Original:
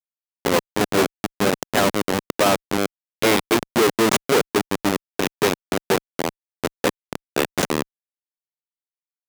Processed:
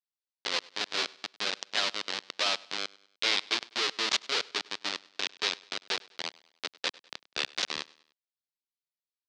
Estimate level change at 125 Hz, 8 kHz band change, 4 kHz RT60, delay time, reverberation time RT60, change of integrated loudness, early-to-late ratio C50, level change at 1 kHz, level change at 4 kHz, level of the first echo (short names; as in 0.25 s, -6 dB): under -30 dB, -11.0 dB, none, 0.1 s, none, -9.5 dB, none, -14.0 dB, -1.0 dB, -23.0 dB